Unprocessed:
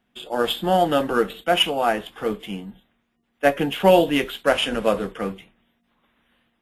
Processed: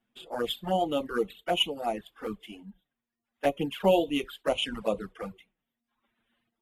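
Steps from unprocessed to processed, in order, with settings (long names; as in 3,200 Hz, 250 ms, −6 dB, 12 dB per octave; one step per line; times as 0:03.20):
flanger swept by the level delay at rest 8.9 ms, full sweep at −16.5 dBFS
reverb reduction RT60 0.97 s
level −6 dB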